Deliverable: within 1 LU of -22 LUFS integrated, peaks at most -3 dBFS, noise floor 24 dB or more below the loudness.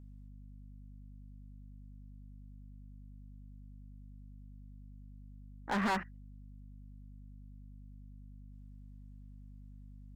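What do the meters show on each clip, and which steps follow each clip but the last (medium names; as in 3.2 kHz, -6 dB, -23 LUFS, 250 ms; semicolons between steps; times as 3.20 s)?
clipped samples 0.4%; clipping level -27.5 dBFS; hum 50 Hz; highest harmonic 250 Hz; hum level -49 dBFS; loudness -46.0 LUFS; peak level -27.5 dBFS; loudness target -22.0 LUFS
-> clip repair -27.5 dBFS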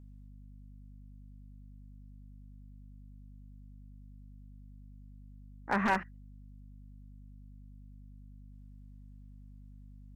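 clipped samples 0.0%; hum 50 Hz; highest harmonic 250 Hz; hum level -49 dBFS
-> hum notches 50/100/150/200/250 Hz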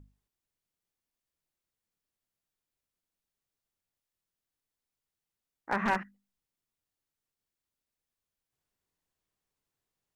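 hum not found; loudness -32.0 LUFS; peak level -17.5 dBFS; loudness target -22.0 LUFS
-> trim +10 dB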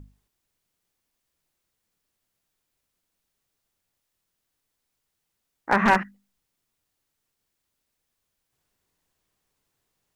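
loudness -22.0 LUFS; peak level -7.5 dBFS; noise floor -80 dBFS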